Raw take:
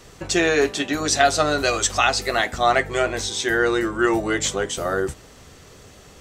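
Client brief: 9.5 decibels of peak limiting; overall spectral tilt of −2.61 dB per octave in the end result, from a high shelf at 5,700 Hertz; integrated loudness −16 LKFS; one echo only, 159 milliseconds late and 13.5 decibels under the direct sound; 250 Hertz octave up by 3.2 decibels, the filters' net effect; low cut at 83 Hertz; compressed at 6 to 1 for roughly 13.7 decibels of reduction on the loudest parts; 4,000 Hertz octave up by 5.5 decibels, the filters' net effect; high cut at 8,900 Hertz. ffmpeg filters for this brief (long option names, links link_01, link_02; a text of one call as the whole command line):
ffmpeg -i in.wav -af "highpass=83,lowpass=8900,equalizer=frequency=250:width_type=o:gain=5,equalizer=frequency=4000:width_type=o:gain=5.5,highshelf=frequency=5700:gain=3.5,acompressor=threshold=-25dB:ratio=6,alimiter=limit=-19.5dB:level=0:latency=1,aecho=1:1:159:0.211,volume=13.5dB" out.wav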